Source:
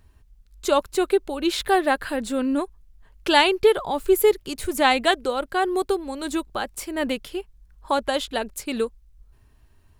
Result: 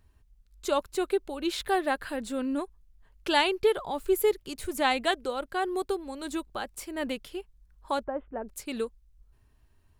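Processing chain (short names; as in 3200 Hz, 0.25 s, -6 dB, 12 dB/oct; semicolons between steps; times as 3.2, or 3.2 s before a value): 8.04–8.48 Gaussian blur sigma 6.5 samples; gain -7 dB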